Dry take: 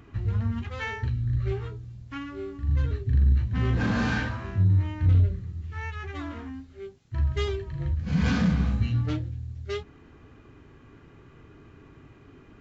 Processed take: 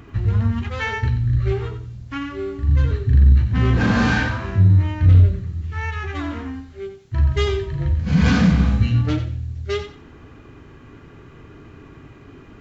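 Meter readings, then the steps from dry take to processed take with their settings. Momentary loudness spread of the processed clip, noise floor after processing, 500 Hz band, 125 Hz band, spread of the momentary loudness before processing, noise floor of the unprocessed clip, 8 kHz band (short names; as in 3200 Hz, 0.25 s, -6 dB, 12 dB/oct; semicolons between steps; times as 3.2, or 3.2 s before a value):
15 LU, -44 dBFS, +8.5 dB, +8.0 dB, 14 LU, -53 dBFS, n/a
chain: thinning echo 90 ms, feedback 26%, level -9.5 dB; gain +8 dB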